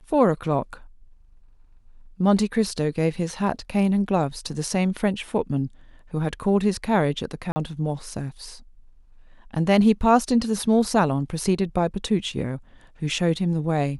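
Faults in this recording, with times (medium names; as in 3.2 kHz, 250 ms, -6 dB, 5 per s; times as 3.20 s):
7.52–7.56 s: dropout 40 ms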